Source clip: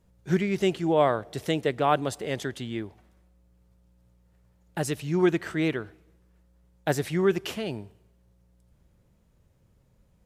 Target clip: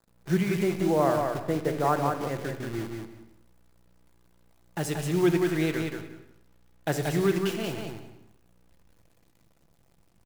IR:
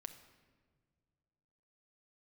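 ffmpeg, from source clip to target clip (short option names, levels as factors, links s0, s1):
-filter_complex "[0:a]asettb=1/sr,asplit=3[s0][s1][s2];[s0]atrim=end=0.634[s3];[s1]atrim=start=0.63:end=2.8,asetpts=PTS-STARTPTS,afade=t=in:d=0.004:c=qsin,afade=t=out:st=2.166:d=0.004:c=qsin,lowpass=f=1800:w=0.5412,lowpass=f=1800:w=1.3066[s4];[s2]atrim=start=2.796[s5];[s3][s4]acrossfade=d=0.004:c1=hsin:c2=qsin[s6];[s6][s5]acrossfade=d=0.004:c1=qsin:c2=hsin,acrusher=bits=7:dc=4:mix=0:aa=0.000001,aecho=1:1:181|362|543:0.596|0.101|0.0172[s7];[1:a]atrim=start_sample=2205,afade=t=out:st=0.4:d=0.01,atrim=end_sample=18081[s8];[s7][s8]afir=irnorm=-1:irlink=0,volume=1.41"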